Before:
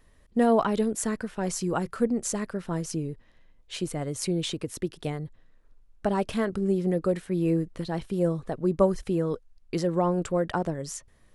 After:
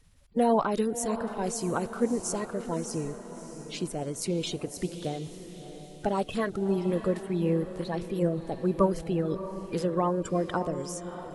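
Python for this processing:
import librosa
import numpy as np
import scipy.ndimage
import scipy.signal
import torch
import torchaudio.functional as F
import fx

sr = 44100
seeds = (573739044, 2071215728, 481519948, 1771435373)

y = fx.spec_quant(x, sr, step_db=30)
y = fx.echo_diffused(y, sr, ms=646, feedback_pct=49, wet_db=-11.0)
y = F.gain(torch.from_numpy(y), -1.5).numpy()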